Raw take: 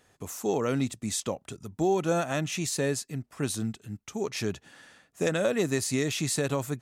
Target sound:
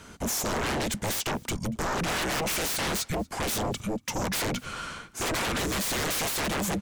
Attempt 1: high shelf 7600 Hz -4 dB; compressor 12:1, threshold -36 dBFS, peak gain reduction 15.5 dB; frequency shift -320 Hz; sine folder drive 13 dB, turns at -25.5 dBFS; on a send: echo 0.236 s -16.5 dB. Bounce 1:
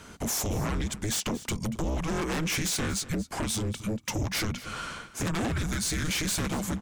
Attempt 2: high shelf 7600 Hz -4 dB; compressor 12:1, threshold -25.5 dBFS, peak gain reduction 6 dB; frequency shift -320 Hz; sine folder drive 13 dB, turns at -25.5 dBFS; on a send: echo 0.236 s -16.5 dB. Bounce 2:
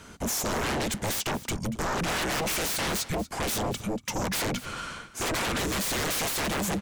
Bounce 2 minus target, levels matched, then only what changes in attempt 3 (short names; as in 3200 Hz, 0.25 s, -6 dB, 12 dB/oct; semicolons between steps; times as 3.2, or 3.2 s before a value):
echo-to-direct +9.5 dB
change: echo 0.236 s -26 dB